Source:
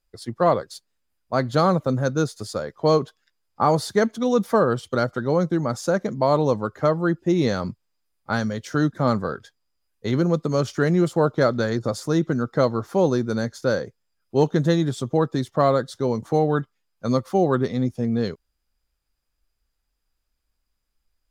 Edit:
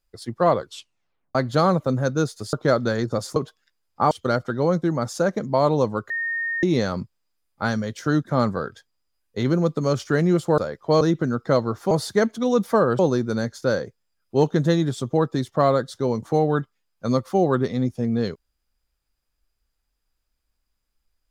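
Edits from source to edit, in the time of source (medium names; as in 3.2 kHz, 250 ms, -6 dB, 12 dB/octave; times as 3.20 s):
0.59 s: tape stop 0.76 s
2.53–2.96 s: swap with 11.26–12.09 s
3.71–4.79 s: move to 12.99 s
6.78–7.31 s: bleep 1.84 kHz -23 dBFS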